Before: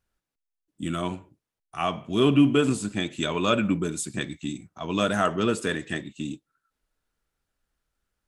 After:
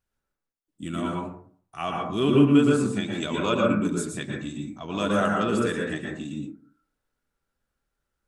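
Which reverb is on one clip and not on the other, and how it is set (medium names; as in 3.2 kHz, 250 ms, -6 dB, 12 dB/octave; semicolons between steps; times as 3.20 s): plate-style reverb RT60 0.5 s, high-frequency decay 0.25×, pre-delay 105 ms, DRR -1.5 dB; trim -4 dB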